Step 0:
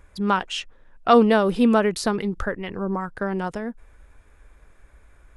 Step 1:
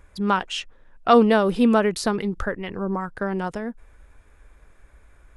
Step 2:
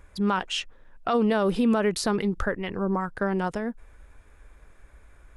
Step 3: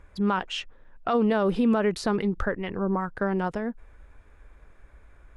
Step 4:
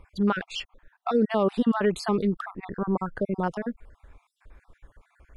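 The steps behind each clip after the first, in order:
nothing audible
limiter -15.5 dBFS, peak gain reduction 11.5 dB
LPF 3100 Hz 6 dB/oct
random spectral dropouts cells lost 42%; gain +1.5 dB

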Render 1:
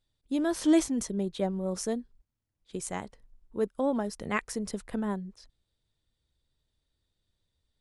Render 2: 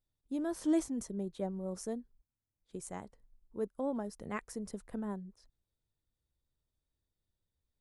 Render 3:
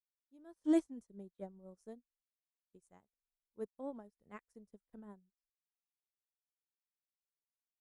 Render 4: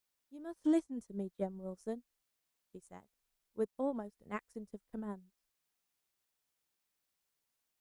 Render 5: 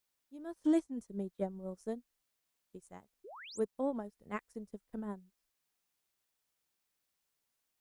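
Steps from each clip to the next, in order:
bell 3200 Hz -8 dB 1.9 oct; gain -7 dB
opening faded in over 0.78 s; upward expander 2.5:1, over -54 dBFS; gain +1 dB
compressor 3:1, threshold -42 dBFS, peak gain reduction 12.5 dB; gain +11 dB
painted sound rise, 3.24–3.6, 340–9500 Hz -51 dBFS; gain +1 dB

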